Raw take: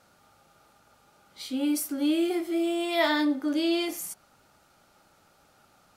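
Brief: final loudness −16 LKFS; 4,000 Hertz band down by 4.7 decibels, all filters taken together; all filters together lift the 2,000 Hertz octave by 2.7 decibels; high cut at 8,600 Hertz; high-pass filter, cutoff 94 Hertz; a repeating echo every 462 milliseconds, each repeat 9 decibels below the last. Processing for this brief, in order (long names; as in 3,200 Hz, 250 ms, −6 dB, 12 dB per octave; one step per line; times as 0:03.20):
high-pass filter 94 Hz
low-pass filter 8,600 Hz
parametric band 2,000 Hz +5 dB
parametric band 4,000 Hz −8 dB
repeating echo 462 ms, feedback 35%, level −9 dB
level +11 dB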